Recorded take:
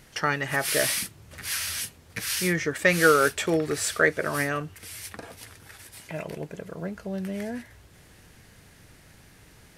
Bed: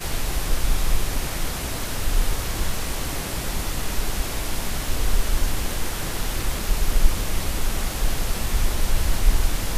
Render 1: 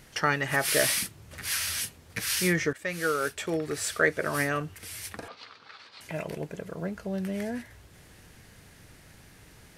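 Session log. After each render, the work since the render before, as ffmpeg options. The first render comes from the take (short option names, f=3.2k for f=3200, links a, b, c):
-filter_complex "[0:a]asettb=1/sr,asplit=3[a][b][c];[a]atrim=end=5.284[d];[b]atrim=start=5.28:end=6.01,asetpts=PTS-STARTPTS,afade=t=in:d=0.004:c=qsin,afade=t=out:st=0.726:d=0.004:c=qsin,highpass=320,equalizer=f=340:t=q:w=4:g=-9,equalizer=f=650:t=q:w=4:g=-3,equalizer=f=1.2k:t=q:w=4:g=9,equalizer=f=1.8k:t=q:w=4:g=-5,equalizer=f=4.3k:t=q:w=4:g=8,lowpass=f=4.4k:w=0.5412,lowpass=f=4.4k:w=1.3066[e];[c]atrim=start=6.006[f];[d][e]acrossfade=d=0.004:c1=hsin:c2=qsin[g];[g][f]acrossfade=d=0.004:c1=qsin:c2=hsin,asplit=2[h][i];[h]atrim=end=2.73,asetpts=PTS-STARTPTS,afade=t=out:st=2.726:d=0.004:c=hsin:silence=0.188365[j];[i]atrim=start=2.73,asetpts=PTS-STARTPTS,afade=t=in:d=1.92:silence=0.188365[k];[j][k]concat=n=2:v=0:a=1"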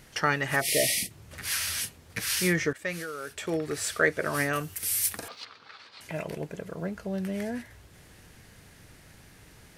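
-filter_complex "[0:a]asplit=3[a][b][c];[a]afade=t=out:st=0.6:d=0.02[d];[b]asuperstop=centerf=1200:order=20:qfactor=1.1,afade=t=in:st=0.6:d=0.02,afade=t=out:st=1.09:d=0.02[e];[c]afade=t=in:st=1.09:d=0.02[f];[d][e][f]amix=inputs=3:normalize=0,asettb=1/sr,asplit=3[g][h][i];[g]atrim=end=2.964[j];[h]atrim=start=2.96:end=3.44,asetpts=PTS-STARTPTS,afade=t=in:d=0.004:c=qsin,afade=t=out:st=0.476:d=0.004:c=qsin,acompressor=threshold=-32dB:ratio=12:attack=3.2:release=140:knee=1:detection=peak[k];[i]atrim=start=3.436[l];[j][k]acrossfade=d=0.004:c1=hsin:c2=qsin[m];[m][l]acrossfade=d=0.004:c1=qsin:c2=hsin,asettb=1/sr,asplit=3[n][o][p];[n]atrim=end=4.534[q];[o]atrim=start=4.53:end=5.45,asetpts=PTS-STARTPTS,afade=t=in:d=0.004:c=qsin,afade=t=out:st=0.916:d=0.004:c=qsin,aemphasis=mode=production:type=75fm[r];[p]atrim=start=5.446[s];[q][r]acrossfade=d=0.004:c1=hsin:c2=qsin[t];[t][s]acrossfade=d=0.004:c1=qsin:c2=hsin"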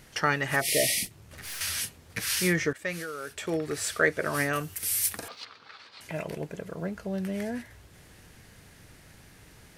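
-filter_complex "[0:a]asettb=1/sr,asplit=3[a][b][c];[a]atrim=end=1.054[d];[b]atrim=start=1.05:end=1.61,asetpts=PTS-STARTPTS,afade=t=in:d=0.004:c=qsin,afade=t=out:st=0.556:d=0.004:c=qsin,aeval=exprs='(tanh(63.1*val(0)+0.45)-tanh(0.45))/63.1':c=same[e];[c]atrim=start=1.606[f];[d][e]acrossfade=d=0.004:c1=hsin:c2=qsin[g];[g][f]acrossfade=d=0.004:c1=qsin:c2=hsin"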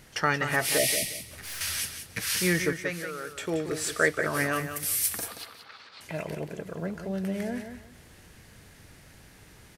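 -af "aecho=1:1:178|356|534:0.355|0.0816|0.0188"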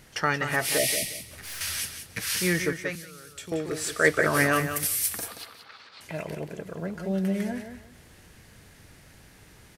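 -filter_complex "[0:a]asettb=1/sr,asplit=3[a][b][c];[a]atrim=end=2.954[d];[b]atrim=start=2.95:end=3.52,asetpts=PTS-STARTPTS,afade=t=in:d=0.004:c=qsin,afade=t=out:st=0.566:d=0.004:c=qsin,acrossover=split=200|3000[e][f][g];[f]acompressor=threshold=-54dB:ratio=2.5:attack=3.2:release=140:knee=2.83:detection=peak[h];[e][h][g]amix=inputs=3:normalize=0[i];[c]atrim=start=3.516[j];[d][i]acrossfade=d=0.004:c1=hsin:c2=qsin[k];[k][j]acrossfade=d=0.004:c1=qsin:c2=hsin,asplit=3[l][m][n];[l]afade=t=out:st=4.04:d=0.02[o];[m]acontrast=31,afade=t=in:st=4.04:d=0.02,afade=t=out:st=4.86:d=0.02[p];[n]afade=t=in:st=4.86:d=0.02[q];[o][p][q]amix=inputs=3:normalize=0,asettb=1/sr,asplit=3[r][s][t];[r]atrim=end=6.974[u];[s]atrim=start=6.97:end=7.52,asetpts=PTS-STARTPTS,afade=t=in:d=0.004:c=qsin,afade=t=out:st=0.546:d=0.004:c=qsin,aecho=1:1:5.5:0.75,atrim=end_sample=24255[v];[t]atrim=start=7.516[w];[u][v]acrossfade=d=0.004:c1=hsin:c2=qsin[x];[x][w]acrossfade=d=0.004:c1=qsin:c2=hsin"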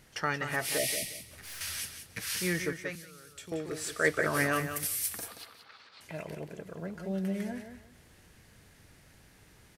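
-af "volume=-6dB"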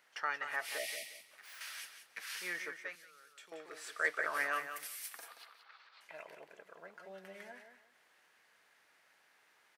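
-af "highpass=990,equalizer=f=11k:t=o:w=2.8:g=-14"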